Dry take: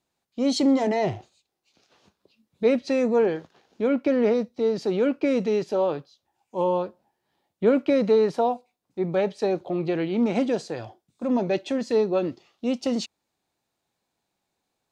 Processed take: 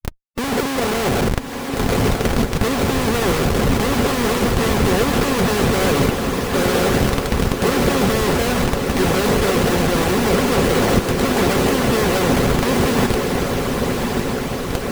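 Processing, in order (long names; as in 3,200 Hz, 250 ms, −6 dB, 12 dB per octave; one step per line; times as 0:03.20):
compressor on every frequency bin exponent 0.4
downward expander −36 dBFS
low-pass filter 3,500 Hz 6 dB per octave
tilt shelving filter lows +6 dB, about 810 Hz
comparator with hysteresis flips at −28 dBFS
transient designer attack −3 dB, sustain +8 dB
notch comb filter 310 Hz
feedback delay with all-pass diffusion 1,151 ms, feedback 66%, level −4 dB
harmonic and percussive parts rebalanced harmonic −9 dB
level +4 dB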